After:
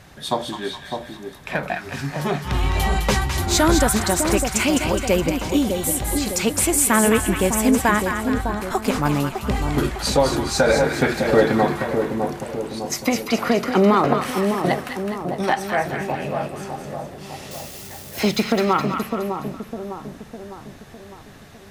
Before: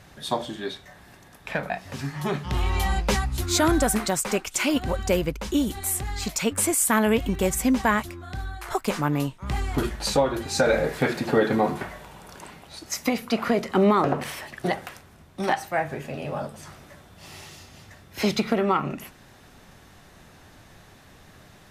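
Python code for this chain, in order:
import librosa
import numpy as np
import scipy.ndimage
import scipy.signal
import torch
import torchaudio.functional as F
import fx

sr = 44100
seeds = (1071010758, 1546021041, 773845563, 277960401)

y = fx.crossing_spikes(x, sr, level_db=-35.0, at=(17.51, 18.2))
y = fx.echo_split(y, sr, split_hz=1000.0, low_ms=605, high_ms=209, feedback_pct=52, wet_db=-5.5)
y = F.gain(torch.from_numpy(y), 3.5).numpy()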